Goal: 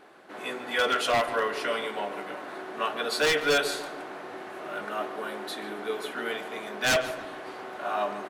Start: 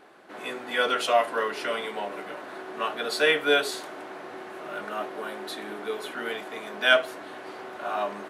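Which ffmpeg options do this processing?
-filter_complex "[0:a]aeval=exprs='0.141*(abs(mod(val(0)/0.141+3,4)-2)-1)':c=same,asplit=2[a][b];[b]adelay=145,lowpass=f=2.9k:p=1,volume=-11.5dB,asplit=2[c][d];[d]adelay=145,lowpass=f=2.9k:p=1,volume=0.47,asplit=2[e][f];[f]adelay=145,lowpass=f=2.9k:p=1,volume=0.47,asplit=2[g][h];[h]adelay=145,lowpass=f=2.9k:p=1,volume=0.47,asplit=2[i][j];[j]adelay=145,lowpass=f=2.9k:p=1,volume=0.47[k];[c][e][g][i][k]amix=inputs=5:normalize=0[l];[a][l]amix=inputs=2:normalize=0"

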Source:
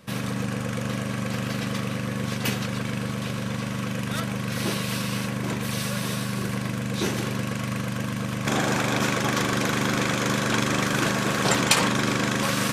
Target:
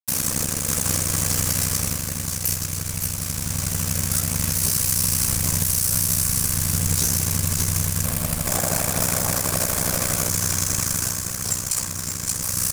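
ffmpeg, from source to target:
-filter_complex "[0:a]acontrast=25,aeval=exprs='sgn(val(0))*max(abs(val(0))-0.0355,0)':c=same,aecho=1:1:57|269|559|580:0.178|0.106|0.2|0.316,aeval=exprs='val(0)*sin(2*PI*31*n/s)':c=same,asubboost=boost=6.5:cutoff=110,aexciter=amount=14.1:drive=1:freq=5.1k,acrusher=bits=4:mix=0:aa=0.000001,dynaudnorm=f=220:g=9:m=11.5dB,asettb=1/sr,asplit=3[a][b][c];[a]atrim=end=8.054[d];[b]atrim=start=8.05:end=10.29,asetpts=PTS-STARTPTS,afade=t=in:d=0.004:c=qsin,afade=t=out:st=2.236:d=0.004:c=qsin,equalizer=f=100:t=o:w=0.67:g=-5,equalizer=f=630:t=o:w=0.67:g=9,equalizer=f=6.3k:t=o:w=0.67:g=-6[e];[c]atrim=start=10.286[f];[d][e]acrossfade=d=0.004:c1=hsin:c2=qsin[g];[g][f]acrossfade=d=0.004:c1=qsin:c2=hsin,alimiter=level_in=9dB:limit=-1dB:release=50:level=0:latency=1,volume=-8dB"

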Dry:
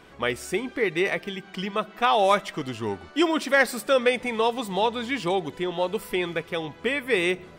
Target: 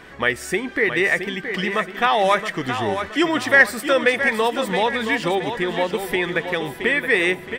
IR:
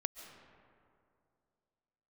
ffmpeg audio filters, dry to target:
-filter_complex "[0:a]equalizer=f=1.8k:t=o:w=0.33:g=11,asplit=2[a][b];[b]acompressor=threshold=-29dB:ratio=6,volume=0dB[c];[a][c]amix=inputs=2:normalize=0,aecho=1:1:671|1342|2013|2684:0.376|0.15|0.0601|0.0241"

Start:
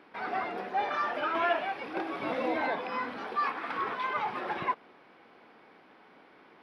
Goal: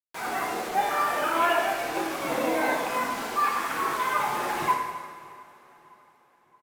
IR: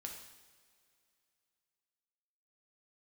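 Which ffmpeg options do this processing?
-filter_complex "[0:a]bandreject=f=60:t=h:w=6,bandreject=f=120:t=h:w=6,bandreject=f=180:t=h:w=6,bandreject=f=240:t=h:w=6,bandreject=f=300:t=h:w=6,bandreject=f=360:t=h:w=6,bandreject=f=420:t=h:w=6,acrusher=bits=6:mix=0:aa=0.000001,asplit=2[a][b];[b]adelay=614,lowpass=f=2.3k:p=1,volume=-23dB,asplit=2[c][d];[d]adelay=614,lowpass=f=2.3k:p=1,volume=0.48,asplit=2[e][f];[f]adelay=614,lowpass=f=2.3k:p=1,volume=0.48[g];[a][c][e][g]amix=inputs=4:normalize=0[h];[1:a]atrim=start_sample=2205,asetrate=30870,aresample=44100[i];[h][i]afir=irnorm=-1:irlink=0,volume=6dB"

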